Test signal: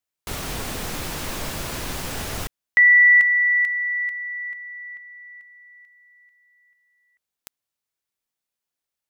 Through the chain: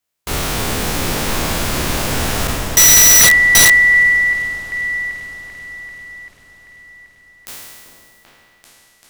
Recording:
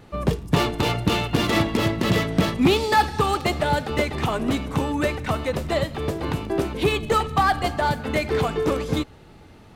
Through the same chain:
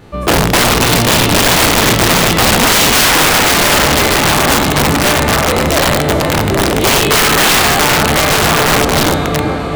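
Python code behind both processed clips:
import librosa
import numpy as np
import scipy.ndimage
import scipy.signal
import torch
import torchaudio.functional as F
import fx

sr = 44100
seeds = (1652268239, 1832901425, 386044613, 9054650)

y = fx.spec_trails(x, sr, decay_s=1.86)
y = fx.echo_opening(y, sr, ms=390, hz=750, octaves=2, feedback_pct=70, wet_db=-6)
y = (np.mod(10.0 ** (11.0 / 20.0) * y + 1.0, 2.0) - 1.0) / 10.0 ** (11.0 / 20.0)
y = y * librosa.db_to_amplitude(6.5)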